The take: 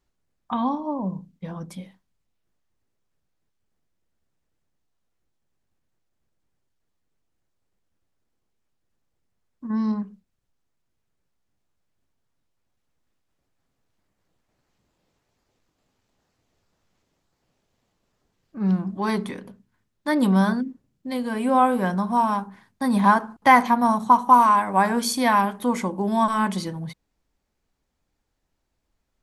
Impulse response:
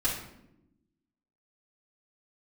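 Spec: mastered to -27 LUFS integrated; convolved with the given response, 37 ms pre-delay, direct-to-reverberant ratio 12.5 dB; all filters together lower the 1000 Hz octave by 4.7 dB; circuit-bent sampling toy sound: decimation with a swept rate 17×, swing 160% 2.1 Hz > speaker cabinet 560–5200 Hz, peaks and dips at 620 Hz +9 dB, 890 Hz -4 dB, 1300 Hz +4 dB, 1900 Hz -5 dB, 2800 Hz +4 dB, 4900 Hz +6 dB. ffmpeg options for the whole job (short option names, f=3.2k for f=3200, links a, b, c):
-filter_complex "[0:a]equalizer=f=1k:t=o:g=-4.5,asplit=2[a][b];[1:a]atrim=start_sample=2205,adelay=37[c];[b][c]afir=irnorm=-1:irlink=0,volume=-20.5dB[d];[a][d]amix=inputs=2:normalize=0,acrusher=samples=17:mix=1:aa=0.000001:lfo=1:lforange=27.2:lforate=2.1,highpass=560,equalizer=f=620:t=q:w=4:g=9,equalizer=f=890:t=q:w=4:g=-4,equalizer=f=1.3k:t=q:w=4:g=4,equalizer=f=1.9k:t=q:w=4:g=-5,equalizer=f=2.8k:t=q:w=4:g=4,equalizer=f=4.9k:t=q:w=4:g=6,lowpass=f=5.2k:w=0.5412,lowpass=f=5.2k:w=1.3066,volume=-2dB"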